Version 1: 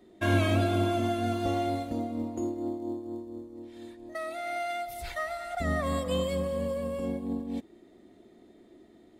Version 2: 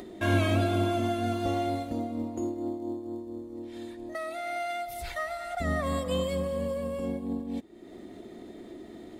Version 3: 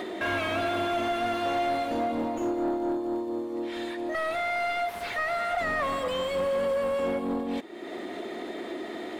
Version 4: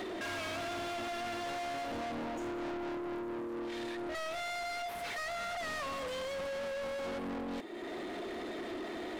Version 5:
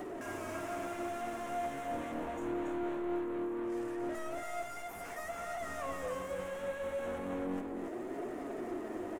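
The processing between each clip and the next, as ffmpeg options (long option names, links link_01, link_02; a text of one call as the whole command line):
ffmpeg -i in.wav -af "acompressor=mode=upward:threshold=-33dB:ratio=2.5" out.wav
ffmpeg -i in.wav -filter_complex "[0:a]crystalizer=i=8.5:c=0,asplit=2[link_01][link_02];[link_02]highpass=frequency=720:poles=1,volume=30dB,asoftclip=type=tanh:threshold=-9dB[link_03];[link_01][link_03]amix=inputs=2:normalize=0,lowpass=frequency=1100:poles=1,volume=-6dB,bass=frequency=250:gain=-5,treble=frequency=4000:gain=-12,volume=-7dB" out.wav
ffmpeg -i in.wav -af "asoftclip=type=tanh:threshold=-37dB" out.wav
ffmpeg -i in.wav -filter_complex "[0:a]acrossover=split=6100[link_01][link_02];[link_01]adynamicsmooth=sensitivity=3.5:basefreq=820[link_03];[link_03][link_02]amix=inputs=2:normalize=0,flanger=delay=6.6:depth=9.8:regen=42:speed=0.24:shape=triangular,aecho=1:1:280:0.631,volume=4dB" out.wav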